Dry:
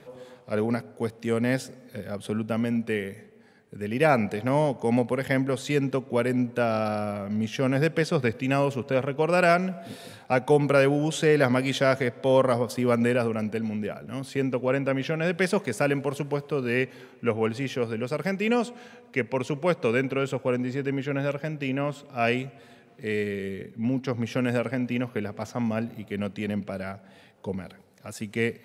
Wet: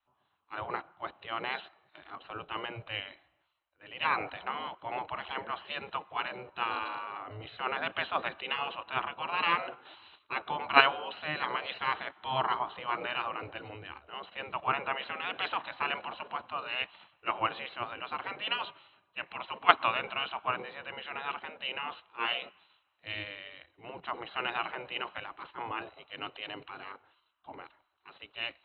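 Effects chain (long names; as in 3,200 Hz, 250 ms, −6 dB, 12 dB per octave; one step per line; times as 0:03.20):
automatic gain control gain up to 7.5 dB
gate on every frequency bin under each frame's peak −15 dB weak
in parallel at +2 dB: output level in coarse steps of 23 dB
on the sum: Chebyshev low-pass with heavy ripple 4,100 Hz, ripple 9 dB
multiband upward and downward expander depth 70%
level −1.5 dB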